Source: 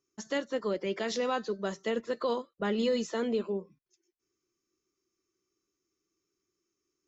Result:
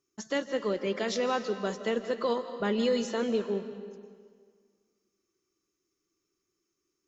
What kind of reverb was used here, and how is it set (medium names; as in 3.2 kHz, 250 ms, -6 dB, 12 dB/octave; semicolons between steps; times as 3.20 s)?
algorithmic reverb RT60 1.8 s, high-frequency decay 0.85×, pre-delay 115 ms, DRR 10 dB; trim +1.5 dB